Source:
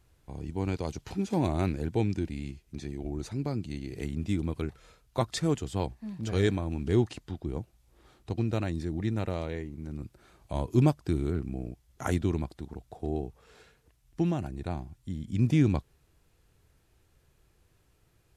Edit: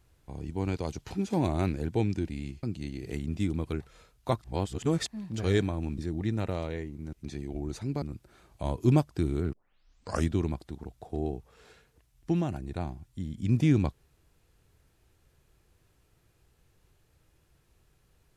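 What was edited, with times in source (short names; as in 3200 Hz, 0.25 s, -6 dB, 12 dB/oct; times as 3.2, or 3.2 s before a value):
2.63–3.52 move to 9.92
5.33–5.96 reverse
6.87–8.77 cut
11.43 tape start 0.77 s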